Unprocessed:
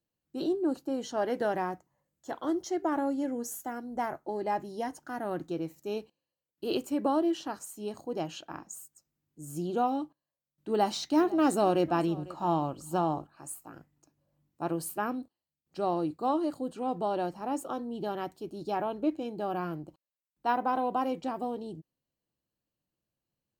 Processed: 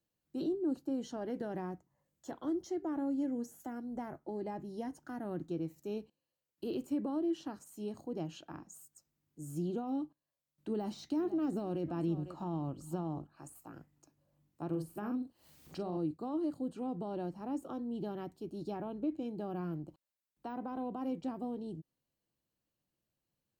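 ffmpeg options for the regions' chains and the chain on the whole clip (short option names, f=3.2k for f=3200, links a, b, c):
-filter_complex "[0:a]asettb=1/sr,asplit=3[a][b][c];[a]atrim=end=14.694[d];[b]atrim=start=14.69:end=15.97,asetpts=PTS-STARTPTS,afade=t=in:d=0.004:c=qsin,afade=t=out:st=1.276:d=0.004:c=qsin,acompressor=mode=upward:threshold=-37dB:ratio=2.5:attack=3.2:release=140:knee=2.83:detection=peak,asplit=2[e][f];[f]adelay=44,volume=-6.5dB[g];[e][g]amix=inputs=2:normalize=0,atrim=end_sample=56448[h];[c]atrim=start=15.966[i];[d][h]acrossfade=d=0.004:c1=hsin:c2=qsin[j];[j][i]acrossfade=d=0.004:c1=qsin:c2=hsin,deesser=1,alimiter=limit=-22.5dB:level=0:latency=1:release=34,acrossover=split=340[k][l];[l]acompressor=threshold=-54dB:ratio=2[m];[k][m]amix=inputs=2:normalize=0"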